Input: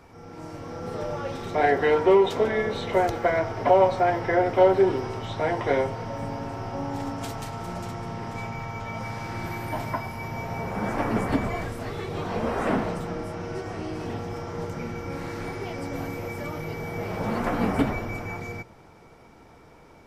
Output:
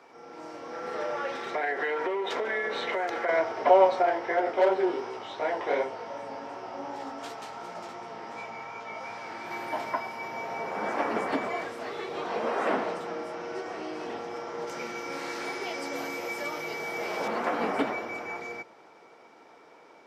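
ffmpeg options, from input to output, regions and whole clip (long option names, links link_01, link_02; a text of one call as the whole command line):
ffmpeg -i in.wav -filter_complex "[0:a]asettb=1/sr,asplit=3[link_01][link_02][link_03];[link_01]atrim=end=0.734[link_04];[link_02]atrim=start=0.73:end=3.29,asetpts=PTS-STARTPTS,afade=type=in:duration=0.004:curve=qsin,afade=type=out:start_time=2.556:duration=0.004:curve=qsin,equalizer=frequency=1800:width=1.5:gain=7.5,acompressor=threshold=-24dB:ratio=10:attack=3.2:release=140:knee=1:detection=peak,aeval=exprs='sgn(val(0))*max(abs(val(0))-0.00141,0)':channel_layout=same[link_05];[link_03]atrim=start=3.286[link_06];[link_04][link_05]acrossfade=duration=0.004:curve1=hsin:curve2=qsin[link_07];[link_07][link_06]acrossfade=duration=0.004:curve1=qsin:curve2=hsin,asettb=1/sr,asplit=3[link_08][link_09][link_10];[link_08]atrim=end=4.024[link_11];[link_09]atrim=start=4.02:end=9.51,asetpts=PTS-STARTPTS,afade=type=in:duration=0.004:curve=qsin,afade=type=out:start_time=5.486:duration=0.004:curve=qsin,flanger=delay=15.5:depth=5.6:speed=2.7,volume=15.5dB,asoftclip=hard,volume=-15.5dB[link_12];[link_10]atrim=start=9.506[link_13];[link_11][link_12]acrossfade=duration=0.004:curve1=hsin:curve2=qsin[link_14];[link_14][link_13]acrossfade=duration=0.004:curve1=qsin:curve2=hsin,asettb=1/sr,asplit=3[link_15][link_16][link_17];[link_15]atrim=end=14.674[link_18];[link_16]atrim=start=14.67:end=17.28,asetpts=PTS-STARTPTS,afade=type=in:duration=0.004:curve=qsin,afade=type=out:start_time=2.606:duration=0.004:curve=qsin,highshelf=frequency=3300:gain=10.5,asplit=2[link_19][link_20];[link_20]adelay=14,volume=-12dB[link_21];[link_19][link_21]amix=inputs=2:normalize=0,atrim=end_sample=115101[link_22];[link_17]atrim=start=17.276[link_23];[link_18][link_22]acrossfade=duration=0.004:curve1=hsin:curve2=qsin[link_24];[link_24][link_23]acrossfade=duration=0.004:curve1=qsin:curve2=hsin,highpass=160,acrossover=split=300 6800:gain=0.126 1 0.251[link_25][link_26][link_27];[link_25][link_26][link_27]amix=inputs=3:normalize=0" out.wav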